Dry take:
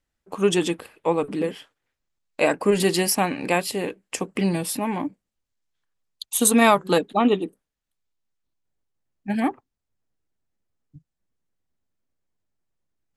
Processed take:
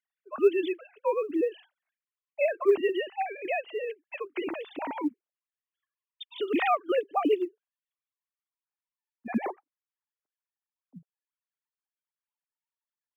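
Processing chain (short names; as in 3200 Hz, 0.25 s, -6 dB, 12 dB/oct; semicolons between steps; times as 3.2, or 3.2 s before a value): sine-wave speech; in parallel at +1 dB: compressor 5:1, threshold -33 dBFS, peak gain reduction 21.5 dB; on the sum: short-mantissa float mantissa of 6-bit; gain -8 dB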